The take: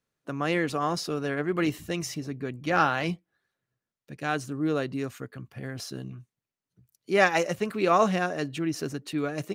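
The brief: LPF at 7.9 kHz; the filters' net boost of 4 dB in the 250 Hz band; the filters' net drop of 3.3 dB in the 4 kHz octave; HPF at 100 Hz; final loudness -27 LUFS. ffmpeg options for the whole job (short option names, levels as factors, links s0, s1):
-af "highpass=100,lowpass=7900,equalizer=f=250:t=o:g=6,equalizer=f=4000:t=o:g=-4.5,volume=0.944"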